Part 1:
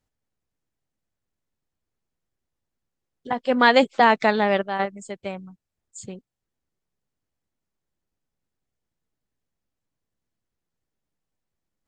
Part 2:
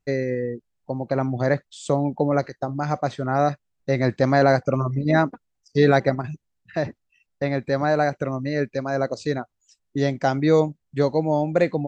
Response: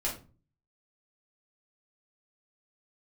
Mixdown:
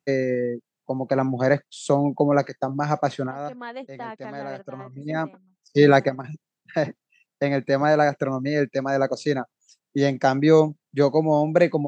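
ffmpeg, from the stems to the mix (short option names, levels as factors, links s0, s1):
-filter_complex "[0:a]highshelf=f=2900:g=-9.5,volume=0.119,asplit=2[s0][s1];[1:a]volume=1.26[s2];[s1]apad=whole_len=523552[s3];[s2][s3]sidechaincompress=threshold=0.00112:ratio=4:attack=16:release=409[s4];[s0][s4]amix=inputs=2:normalize=0,highpass=f=140:w=0.5412,highpass=f=140:w=1.3066"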